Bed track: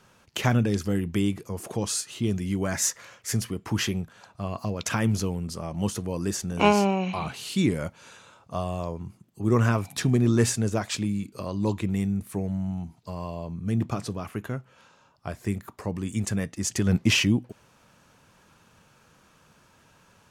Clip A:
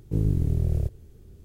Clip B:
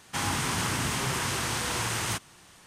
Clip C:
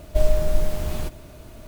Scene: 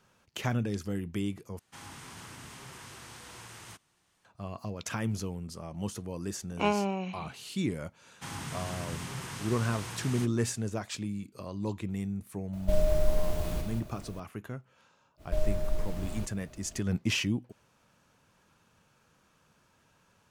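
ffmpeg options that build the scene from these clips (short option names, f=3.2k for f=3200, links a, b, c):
-filter_complex "[2:a]asplit=2[a][b];[3:a]asplit=2[c][d];[0:a]volume=-8dB[e];[b]equalizer=f=150:w=1.5:g=7[f];[c]aecho=1:1:40.82|183.7:0.316|0.562[g];[d]highshelf=f=8.2k:g=-5[h];[e]asplit=2[i][j];[i]atrim=end=1.594[k];[a]atrim=end=2.66,asetpts=PTS-STARTPTS,volume=-18dB[l];[j]atrim=start=4.246[m];[f]atrim=end=2.66,asetpts=PTS-STARTPTS,volume=-12dB,afade=t=in:d=0.004:c=hsin,afade=t=out:st=2.656:d=0.004:c=hsin,adelay=8080[n];[g]atrim=end=1.67,asetpts=PTS-STARTPTS,volume=-7dB,afade=t=in:d=0.004:c=hsin,afade=t=out:st=1.666:d=0.004:c=hsin,adelay=12530[o];[h]atrim=end=1.67,asetpts=PTS-STARTPTS,volume=-10dB,afade=t=in:d=0.05,afade=t=out:st=1.62:d=0.05,adelay=15170[p];[k][l]acrossfade=d=0.004:c1=hsin:c2=hsin[q];[q][m]acrossfade=d=0.004:c1=hsin:c2=hsin[r];[r][n][o][p]amix=inputs=4:normalize=0"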